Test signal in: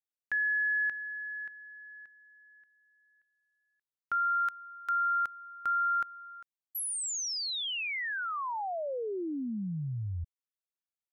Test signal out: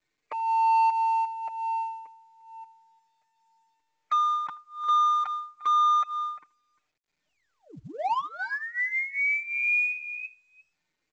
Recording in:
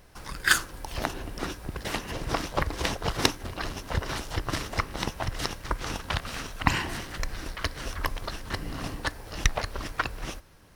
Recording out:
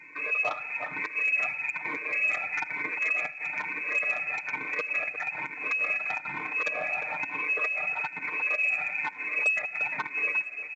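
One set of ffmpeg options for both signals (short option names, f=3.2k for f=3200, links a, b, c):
-filter_complex "[0:a]afftfilt=real='re*pow(10,22/40*sin(2*PI*(1.8*log(max(b,1)*sr/1024/100)/log(2)-(-1.1)*(pts-256)/sr)))':imag='im*pow(10,22/40*sin(2*PI*(1.8*log(max(b,1)*sr/1024/100)/log(2)-(-1.1)*(pts-256)/sr)))':win_size=1024:overlap=0.75,asplit=2[a][b];[b]aecho=0:1:350:0.119[c];[a][c]amix=inputs=2:normalize=0,acompressor=threshold=-32dB:ratio=4:attack=0.7:release=118:knee=1:detection=rms,lowpass=f=2.2k:t=q:w=0.5098,lowpass=f=2.2k:t=q:w=0.6013,lowpass=f=2.2k:t=q:w=0.9,lowpass=f=2.2k:t=q:w=2.563,afreqshift=-2600,acrossover=split=1400[d][e];[d]adynamicsmooth=sensitivity=6.5:basefreq=640[f];[f][e]amix=inputs=2:normalize=0,asoftclip=type=hard:threshold=-30dB,highpass=130,bandreject=f=1.6k:w=13,aecho=1:1:6.6:0.72,asplit=2[g][h];[h]adelay=80,highpass=300,lowpass=3.4k,asoftclip=type=hard:threshold=-31dB,volume=-23dB[i];[g][i]amix=inputs=2:normalize=0,volume=6.5dB" -ar 16000 -c:a pcm_mulaw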